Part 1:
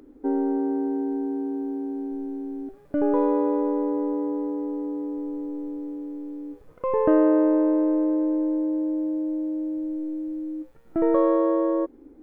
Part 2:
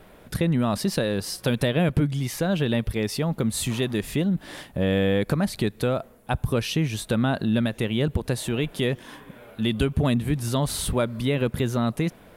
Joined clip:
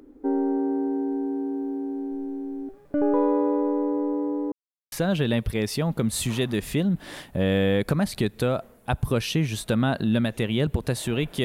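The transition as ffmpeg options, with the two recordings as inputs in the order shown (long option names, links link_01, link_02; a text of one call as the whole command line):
ffmpeg -i cue0.wav -i cue1.wav -filter_complex "[0:a]apad=whole_dur=11.44,atrim=end=11.44,asplit=2[link_01][link_02];[link_01]atrim=end=4.52,asetpts=PTS-STARTPTS,afade=type=out:start_time=4.516:duration=0.004:curve=hsin[link_03];[link_02]atrim=start=4.52:end=4.92,asetpts=PTS-STARTPTS,volume=0[link_04];[1:a]atrim=start=2.33:end=8.85,asetpts=PTS-STARTPTS,afade=type=in:duration=0.004:curve=hsin[link_05];[link_03][link_04][link_05]concat=n=3:v=0:a=1" out.wav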